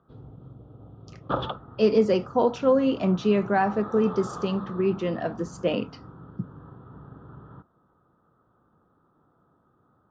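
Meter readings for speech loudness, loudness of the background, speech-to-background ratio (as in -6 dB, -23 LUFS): -24.5 LUFS, -40.0 LUFS, 15.5 dB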